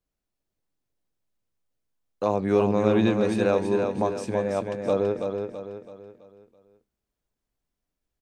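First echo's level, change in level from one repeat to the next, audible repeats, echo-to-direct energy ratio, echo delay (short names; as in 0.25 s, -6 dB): -5.5 dB, -7.5 dB, 4, -4.5 dB, 0.33 s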